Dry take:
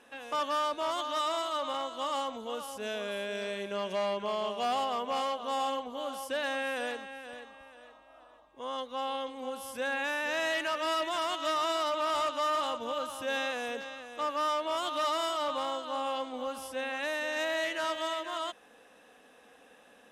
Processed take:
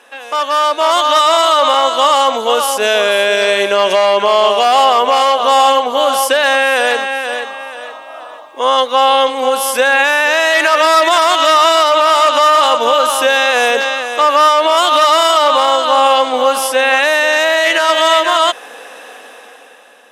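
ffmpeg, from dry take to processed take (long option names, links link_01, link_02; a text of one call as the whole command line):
ffmpeg -i in.wav -filter_complex "[0:a]asettb=1/sr,asplit=3[link_01][link_02][link_03];[link_01]atrim=end=10.544[link_04];[link_02]atrim=start=10.54:end=11.36,asetpts=PTS-STARTPTS,afade=type=in:duration=0.004:curve=qsin,afade=type=out:start_time=0.816:duration=0.004:curve=qsin,bandreject=frequency=2900:width=20[link_05];[link_03]atrim=start=11.356[link_06];[link_04][link_05]acrossfade=duration=0.004:curve1=hsin:curve2=qsin[link_07];[link_07][link_06]acrossfade=duration=0.004:curve1=qsin:curve2=hsin,highpass=460,dynaudnorm=framelen=210:gausssize=9:maxgain=12dB,alimiter=level_in=15.5dB:limit=-1dB:release=50:level=0:latency=1,volume=-1dB" out.wav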